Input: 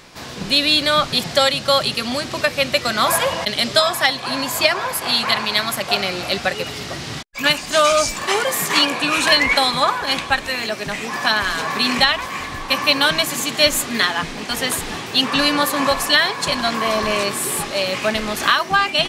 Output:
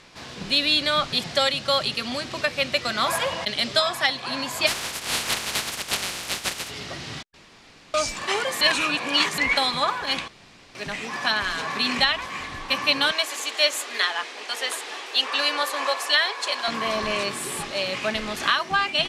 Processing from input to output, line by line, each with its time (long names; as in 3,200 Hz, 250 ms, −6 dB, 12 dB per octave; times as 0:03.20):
0:04.66–0:06.69: compressing power law on the bin magnitudes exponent 0.16
0:07.34–0:07.94: fill with room tone
0:08.61–0:09.38: reverse
0:10.28–0:10.75: fill with room tone
0:13.11–0:16.68: high-pass filter 400 Hz 24 dB per octave
whole clip: Bessel low-pass filter 9,600 Hz, order 8; parametric band 2,900 Hz +3 dB 1.7 octaves; level −7 dB